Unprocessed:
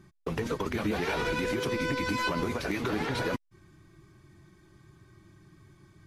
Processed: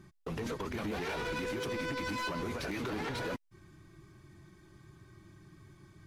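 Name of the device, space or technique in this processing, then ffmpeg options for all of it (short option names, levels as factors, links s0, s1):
limiter into clipper: -af "alimiter=level_in=1.41:limit=0.0631:level=0:latency=1:release=91,volume=0.708,asoftclip=type=hard:threshold=0.0251"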